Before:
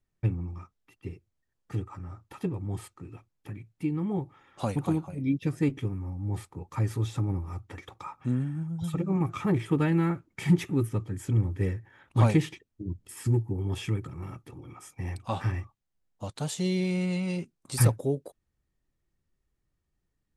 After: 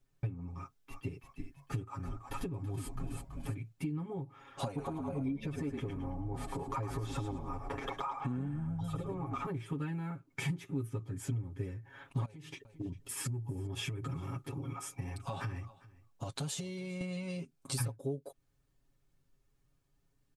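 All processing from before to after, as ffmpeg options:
-filter_complex "[0:a]asettb=1/sr,asplit=3[s0][s1][s2];[s0]atrim=end=0.574[s3];[s1]atrim=start=0.57:end=3.56,asetpts=PTS-STARTPTS,afade=t=in:d=0.004:c=qsin,afade=t=out:st=2.986:d=0.004:c=qsin,highshelf=f=8200:g=3.5,asplit=6[s4][s5][s6][s7][s8][s9];[s5]adelay=330,afreqshift=-76,volume=0.398[s10];[s6]adelay=660,afreqshift=-152,volume=0.184[s11];[s7]adelay=990,afreqshift=-228,volume=0.0841[s12];[s8]adelay=1320,afreqshift=-304,volume=0.0389[s13];[s9]adelay=1650,afreqshift=-380,volume=0.0178[s14];[s4][s10][s11][s12][s13][s14]amix=inputs=6:normalize=0,atrim=end_sample=131859[s15];[s2]atrim=start=3.556[s16];[s3][s15]acrossfade=d=0.004:c1=hsin:c2=qsin[s17];[s17][s16]acrossfade=d=0.004:c1=qsin:c2=hsin,asettb=1/sr,asplit=3[s18][s19][s20];[s18]atrim=end=4.674[s21];[s19]atrim=start=4.67:end=9.46,asetpts=PTS-STARTPTS,afade=t=in:d=0.004:c=qsin,afade=t=out:st=4.786:d=0.004:c=qsin,equalizer=f=720:w=0.4:g=12,acompressor=threshold=0.0178:ratio=2:attack=3.2:release=140:knee=1:detection=peak,asplit=5[s22][s23][s24][s25][s26];[s23]adelay=108,afreqshift=-61,volume=0.501[s27];[s24]adelay=216,afreqshift=-122,volume=0.176[s28];[s25]adelay=324,afreqshift=-183,volume=0.0617[s29];[s26]adelay=432,afreqshift=-244,volume=0.0214[s30];[s22][s27][s28][s29][s30]amix=inputs=5:normalize=0,atrim=end_sample=211239[s31];[s20]atrim=start=9.456[s32];[s21][s31]acrossfade=d=0.004:c1=hsin:c2=qsin[s33];[s33][s32]acrossfade=d=0.004:c1=qsin:c2=hsin,asettb=1/sr,asplit=3[s34][s35][s36];[s34]atrim=end=12.254[s37];[s35]atrim=start=12.25:end=17.01,asetpts=PTS-STARTPTS,afade=t=in:d=0.004:c=qsin,afade=t=out:st=4.756:d=0.004:c=qsin,acompressor=threshold=0.0158:ratio=12:attack=3.2:release=140:knee=1:detection=peak,aecho=1:1:400:0.0668,atrim=end_sample=209916[s38];[s36]atrim=start=17.006[s39];[s37][s38]acrossfade=d=0.004:c1=hsin:c2=qsin[s40];[s40][s39]acrossfade=d=0.004:c1=qsin:c2=hsin,bandreject=f=1900:w=14,acompressor=threshold=0.0112:ratio=12,aecho=1:1:7.3:0.92,volume=1.26"

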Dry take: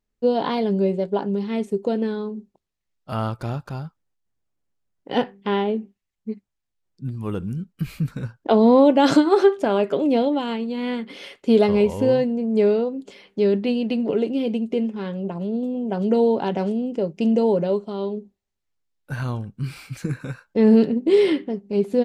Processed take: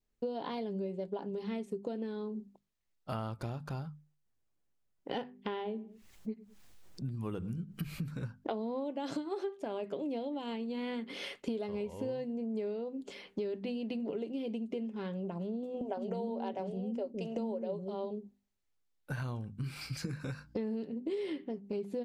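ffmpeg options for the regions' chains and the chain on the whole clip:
-filter_complex "[0:a]asettb=1/sr,asplit=3[s0][s1][s2];[s0]atrim=end=5.474[s3];[s1]atrim=start=5.47:end=8.22,asetpts=PTS-STARTPTS,afade=t=in:d=0.004:c=qsin,afade=t=out:st=2.746:d=0.004:c=qsin,acompressor=mode=upward:threshold=0.0224:ratio=2.5:attack=3.2:release=140:knee=2.83:detection=peak,asplit=2[s4][s5];[s5]adelay=104,lowpass=f=1700:p=1,volume=0.0944,asplit=2[s6][s7];[s7]adelay=104,lowpass=f=1700:p=1,volume=0.29[s8];[s4][s6][s8]amix=inputs=3:normalize=0,atrim=end_sample=121275[s9];[s2]atrim=start=8.216[s10];[s3][s9]acrossfade=d=0.004:c1=hsin:c2=qsin[s11];[s11][s10]acrossfade=d=0.004:c1=qsin:c2=hsin,asettb=1/sr,asplit=3[s12][s13][s14];[s12]atrim=end=15.814[s15];[s13]atrim=start=15.81:end=18.11,asetpts=PTS-STARTPTS,afade=t=in:d=0.004:c=qsin,afade=t=out:st=2.296:d=0.004:c=qsin,equalizer=f=650:t=o:w=0.91:g=5.5,aecho=1:1:5.2:0.35,atrim=end_sample=101430,acrossover=split=350[s16][s17];[s16]adelay=160[s18];[s18][s17]amix=inputs=2:normalize=0,atrim=end_sample=101430[s19];[s14]atrim=start=18.106[s20];[s15][s19]acrossfade=d=0.004:c1=hsin:c2=qsin[s21];[s21][s20]acrossfade=d=0.004:c1=qsin:c2=hsin,asettb=1/sr,asplit=3[s22][s23][s24];[s22]atrim=end=19.814[s25];[s23]atrim=start=19.81:end=20.58,asetpts=PTS-STARTPTS,afade=t=in:d=0.004:c=qsin,afade=t=out:st=0.766:d=0.004:c=qsin,equalizer=f=4900:w=5:g=14,aeval=exprs='val(0)+0.00141*(sin(2*PI*60*n/s)+sin(2*PI*2*60*n/s)/2+sin(2*PI*3*60*n/s)/3+sin(2*PI*4*60*n/s)/4+sin(2*PI*5*60*n/s)/5)':c=same[s26];[s24]atrim=start=20.576[s27];[s25][s26]acrossfade=d=0.004:c1=hsin:c2=qsin[s28];[s28][s27]acrossfade=d=0.004:c1=qsin:c2=hsin,bandreject=f=50:t=h:w=6,bandreject=f=100:t=h:w=6,bandreject=f=150:t=h:w=6,bandreject=f=200:t=h:w=6,bandreject=f=250:t=h:w=6,adynamicequalizer=threshold=0.00562:dfrequency=1400:dqfactor=3.1:tfrequency=1400:tqfactor=3.1:attack=5:release=100:ratio=0.375:range=3:mode=cutabove:tftype=bell,acompressor=threshold=0.0251:ratio=8,volume=0.75"

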